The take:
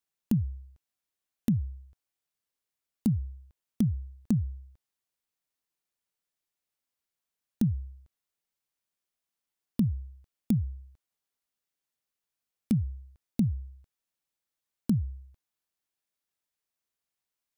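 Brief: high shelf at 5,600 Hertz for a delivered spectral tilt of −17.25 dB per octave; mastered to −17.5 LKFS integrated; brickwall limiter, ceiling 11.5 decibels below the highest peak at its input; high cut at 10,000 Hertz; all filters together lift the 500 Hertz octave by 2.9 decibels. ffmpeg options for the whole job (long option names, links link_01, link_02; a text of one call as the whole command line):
ffmpeg -i in.wav -af "lowpass=10000,equalizer=frequency=500:width_type=o:gain=4,highshelf=frequency=5600:gain=6,volume=18.5dB,alimiter=limit=-6.5dB:level=0:latency=1" out.wav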